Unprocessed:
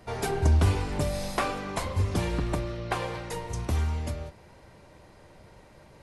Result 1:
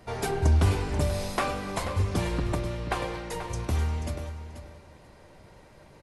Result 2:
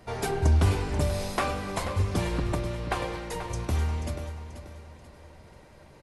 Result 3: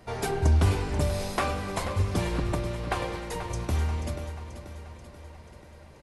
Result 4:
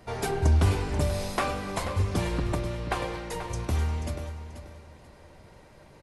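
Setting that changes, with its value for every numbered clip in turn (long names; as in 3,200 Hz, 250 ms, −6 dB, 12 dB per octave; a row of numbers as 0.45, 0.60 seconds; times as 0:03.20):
repeating echo, feedback: 16, 39, 57, 27%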